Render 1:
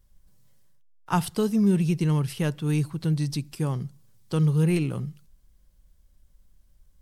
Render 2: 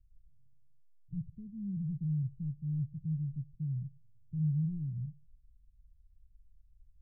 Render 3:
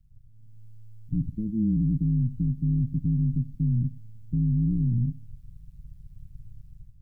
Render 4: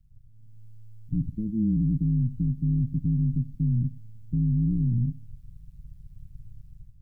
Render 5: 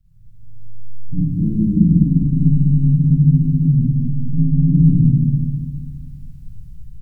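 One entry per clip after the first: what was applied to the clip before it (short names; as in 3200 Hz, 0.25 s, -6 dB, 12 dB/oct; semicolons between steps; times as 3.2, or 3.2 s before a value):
inverse Chebyshev low-pass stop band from 790 Hz, stop band 80 dB; gain -3 dB
limiter -36 dBFS, peak gain reduction 11 dB; AM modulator 110 Hz, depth 55%; AGC gain up to 11 dB; gain +8.5 dB
nothing audible
feedback echo 0.203 s, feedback 51%, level -4 dB; Schroeder reverb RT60 1 s, DRR -7 dB; gain +1 dB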